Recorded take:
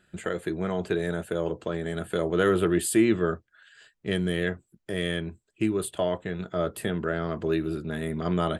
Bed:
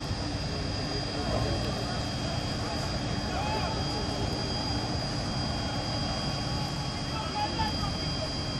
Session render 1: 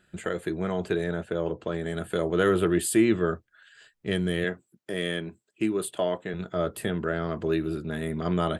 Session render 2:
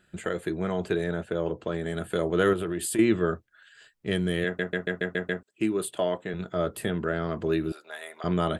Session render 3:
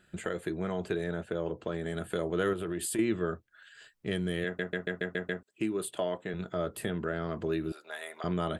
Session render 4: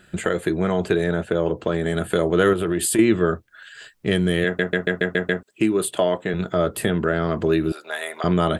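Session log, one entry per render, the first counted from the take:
1.04–1.68 air absorption 92 m; 4.44–6.34 HPF 170 Hz
2.53–2.99 compressor, threshold -26 dBFS; 4.45 stutter in place 0.14 s, 7 plays; 7.72–8.24 Chebyshev high-pass 670 Hz, order 3
compressor 1.5:1, threshold -37 dBFS, peak gain reduction 7.5 dB
gain +12 dB

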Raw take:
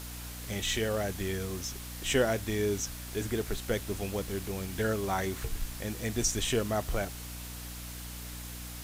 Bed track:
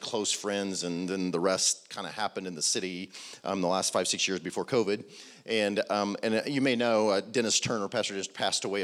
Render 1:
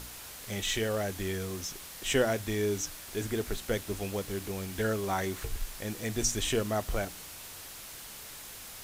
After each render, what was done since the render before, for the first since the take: de-hum 60 Hz, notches 5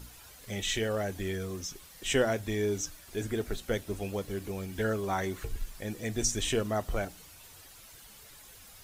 denoiser 10 dB, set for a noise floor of -46 dBFS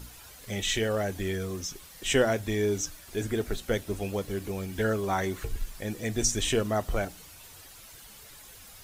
gain +3 dB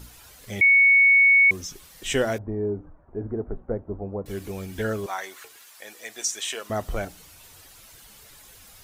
0.61–1.51 bleep 2220 Hz -12.5 dBFS; 2.38–4.26 inverse Chebyshev low-pass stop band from 4600 Hz, stop band 70 dB; 5.06–6.7 HPF 790 Hz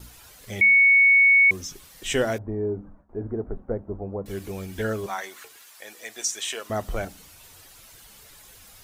gate with hold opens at -41 dBFS; de-hum 68.18 Hz, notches 4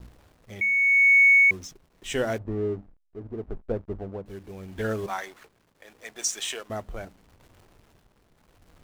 backlash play -37.5 dBFS; tremolo 0.79 Hz, depth 59%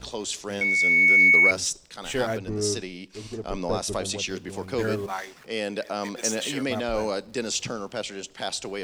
add bed track -2 dB

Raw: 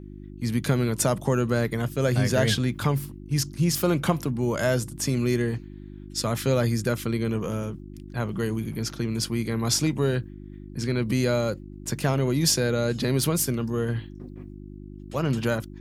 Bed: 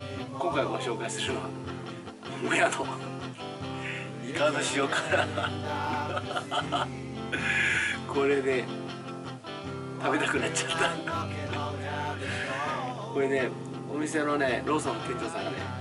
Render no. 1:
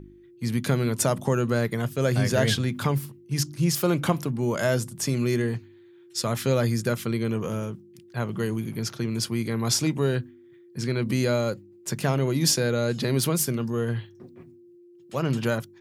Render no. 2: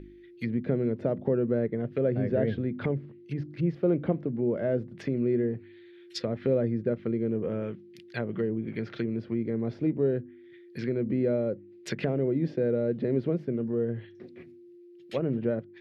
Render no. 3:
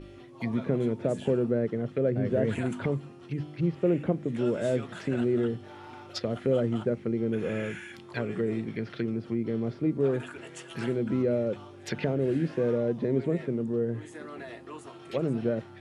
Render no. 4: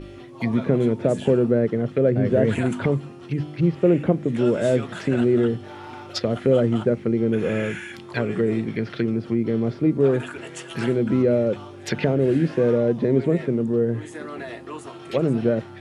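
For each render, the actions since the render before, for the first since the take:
de-hum 50 Hz, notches 6
treble ducked by the level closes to 570 Hz, closed at -23.5 dBFS; graphic EQ 125/500/1000/2000/4000/8000 Hz -8/+4/-11/+10/+7/-11 dB
add bed -16 dB
gain +7.5 dB

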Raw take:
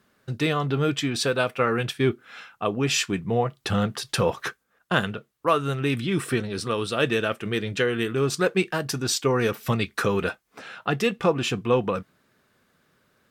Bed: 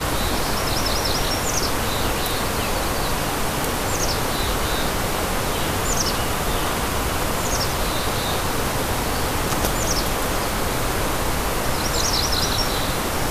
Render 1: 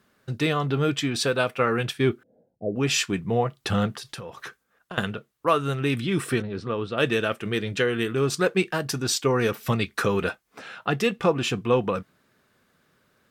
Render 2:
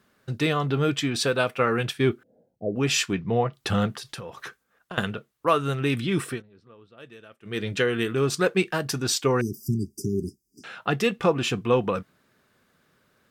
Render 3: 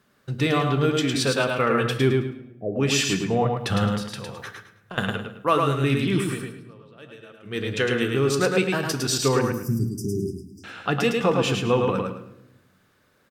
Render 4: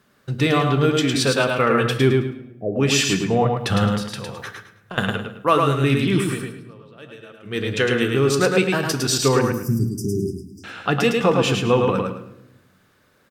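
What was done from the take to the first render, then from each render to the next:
2.23–2.76 elliptic low-pass 600 Hz, stop band 50 dB; 3.92–4.98 compressor 10:1, threshold -33 dBFS; 6.42–6.98 tape spacing loss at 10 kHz 28 dB
3.13–3.53 steep low-pass 5700 Hz; 6.21–7.64 dip -23 dB, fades 0.22 s; 9.41–10.64 brick-wall FIR band-stop 410–4700 Hz
on a send: feedback echo 0.107 s, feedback 27%, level -4 dB; on the sum: shoebox room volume 280 m³, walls mixed, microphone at 0.34 m
gain +3.5 dB

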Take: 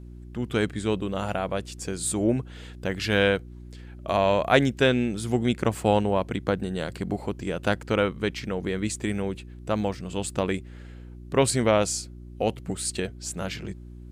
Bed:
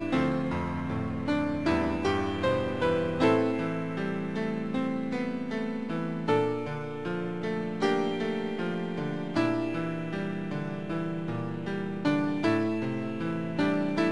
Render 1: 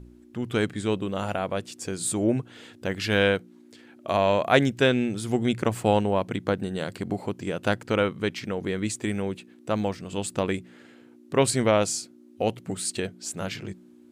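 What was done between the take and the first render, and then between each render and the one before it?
de-hum 60 Hz, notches 3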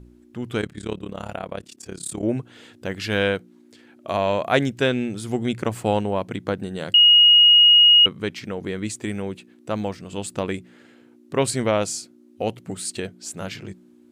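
0.61–2.23 AM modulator 35 Hz, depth 85%; 6.94–8.06 bleep 2880 Hz -9 dBFS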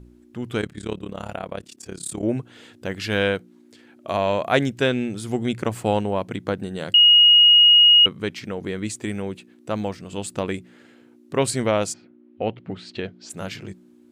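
11.92–13.29 LPF 2300 Hz -> 5200 Hz 24 dB/oct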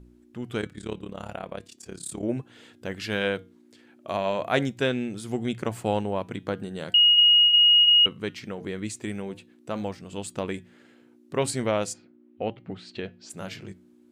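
flange 0.4 Hz, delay 4.3 ms, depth 1.3 ms, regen -89%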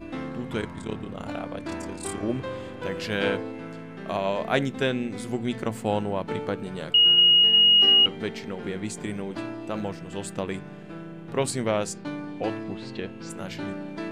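add bed -7.5 dB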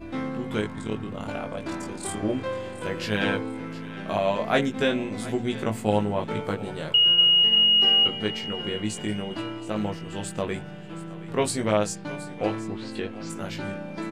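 doubler 19 ms -3.5 dB; thinning echo 0.722 s, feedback 37%, level -16.5 dB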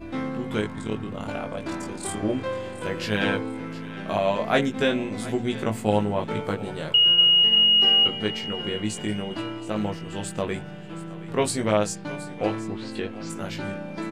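gain +1 dB

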